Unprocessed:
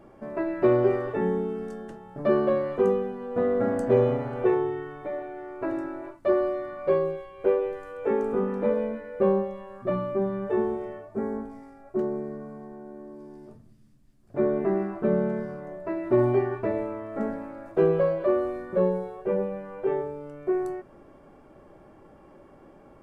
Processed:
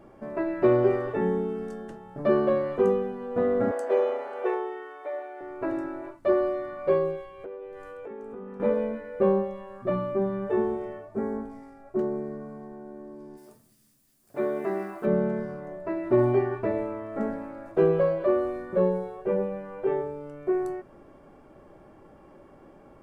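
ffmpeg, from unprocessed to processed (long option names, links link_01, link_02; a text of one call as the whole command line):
ffmpeg -i in.wav -filter_complex "[0:a]asettb=1/sr,asplit=3[link_01][link_02][link_03];[link_01]atrim=end=3.714[link_04];[link_02]atrim=start=3.71:end=5.41,asetpts=PTS-STARTPTS,afade=type=in:duration=0.004:curve=qsin,afade=type=out:start_time=1.696:duration=0.004:curve=qsin,highpass=frequency=440:width=0.5412,highpass=frequency=440:width=1.3066[link_05];[link_03]atrim=start=5.406[link_06];[link_04][link_05]acrossfade=duration=0.004:curve1=hsin:curve2=qsin[link_07];[link_07][link_06]acrossfade=duration=0.004:curve1=qsin:curve2=hsin,asettb=1/sr,asplit=3[link_08][link_09][link_10];[link_08]atrim=end=7.274[link_11];[link_09]atrim=start=7.27:end=8.6,asetpts=PTS-STARTPTS,afade=type=in:duration=0.004:curve=qsin,afade=type=out:start_time=1.326:duration=0.004:curve=qsin,acompressor=threshold=-38dB:ratio=5:attack=3.2:release=140:knee=1:detection=peak[link_12];[link_10]atrim=start=8.596[link_13];[link_11][link_12]acrossfade=duration=0.004:curve1=hsin:curve2=qsin[link_14];[link_14][link_13]acrossfade=duration=0.004:curve1=qsin:curve2=hsin,asplit=3[link_15][link_16][link_17];[link_15]afade=type=out:start_time=13.36:duration=0.02[link_18];[link_16]aemphasis=mode=production:type=riaa,afade=type=in:start_time=13.36:duration=0.02,afade=type=out:start_time=15.05:duration=0.02[link_19];[link_17]afade=type=in:start_time=15.05:duration=0.02[link_20];[link_18][link_19][link_20]amix=inputs=3:normalize=0" out.wav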